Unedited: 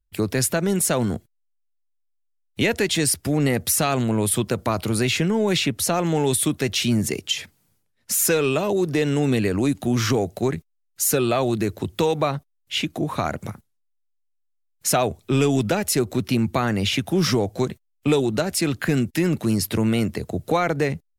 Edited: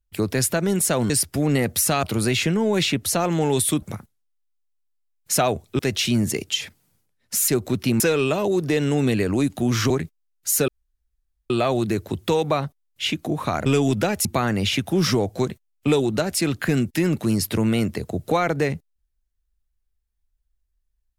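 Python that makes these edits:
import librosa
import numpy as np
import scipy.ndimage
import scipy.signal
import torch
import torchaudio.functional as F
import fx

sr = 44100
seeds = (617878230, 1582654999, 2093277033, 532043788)

y = fx.edit(x, sr, fx.cut(start_s=1.1, length_s=1.91),
    fx.cut(start_s=3.94, length_s=0.83),
    fx.cut(start_s=10.15, length_s=0.28),
    fx.insert_room_tone(at_s=11.21, length_s=0.82),
    fx.move(start_s=13.37, length_s=1.97, to_s=6.56),
    fx.move(start_s=15.93, length_s=0.52, to_s=8.25), tone=tone)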